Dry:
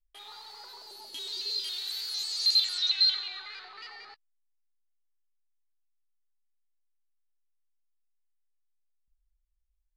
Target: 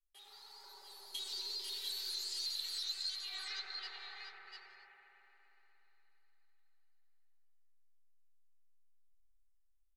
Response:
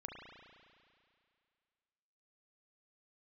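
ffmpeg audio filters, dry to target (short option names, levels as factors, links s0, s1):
-filter_complex "[0:a]agate=range=0.282:threshold=0.00708:ratio=16:detection=peak,highshelf=f=4500:g=11,bandreject=f=50:t=h:w=6,bandreject=f=100:t=h:w=6,bandreject=f=150:t=h:w=6,bandreject=f=200:t=h:w=6,bandreject=f=250:t=h:w=6,bandreject=f=300:t=h:w=6,bandreject=f=350:t=h:w=6,bandreject=f=400:t=h:w=6,aecho=1:1:5.2:0.74,acompressor=threshold=0.0141:ratio=4,flanger=delay=1.8:depth=7.3:regen=-61:speed=1.6:shape=sinusoidal,aecho=1:1:696:0.531[s0];[1:a]atrim=start_sample=2205,asetrate=26460,aresample=44100[s1];[s0][s1]afir=irnorm=-1:irlink=0,volume=1.41"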